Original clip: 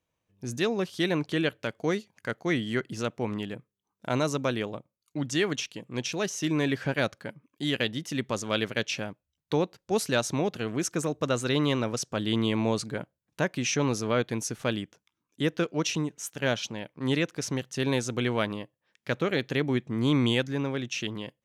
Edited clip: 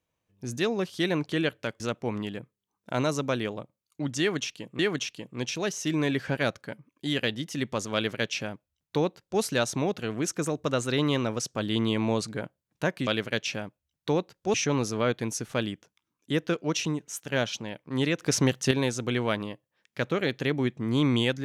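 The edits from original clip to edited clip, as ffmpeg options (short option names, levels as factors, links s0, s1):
-filter_complex "[0:a]asplit=7[s0][s1][s2][s3][s4][s5][s6];[s0]atrim=end=1.802[s7];[s1]atrim=start=2.958:end=5.952[s8];[s2]atrim=start=5.358:end=13.642[s9];[s3]atrim=start=8.508:end=9.982[s10];[s4]atrim=start=13.638:end=17.302[s11];[s5]atrim=start=17.298:end=17.812,asetpts=PTS-STARTPTS,volume=2.37[s12];[s6]atrim=start=17.808[s13];[s7][s8]acrossfade=d=0.004:c1=hsin:c2=hsin[s14];[s14][s9]acrossfade=d=0.004:c1=hsin:c2=hsin[s15];[s15][s10]acrossfade=d=0.004:c1=hsin:c2=hsin[s16];[s16][s11]acrossfade=d=0.004:c1=hsin:c2=hsin[s17];[s17][s12]acrossfade=d=0.004:c1=hsin:c2=hsin[s18];[s18][s13]acrossfade=d=0.004:c1=hsin:c2=hsin"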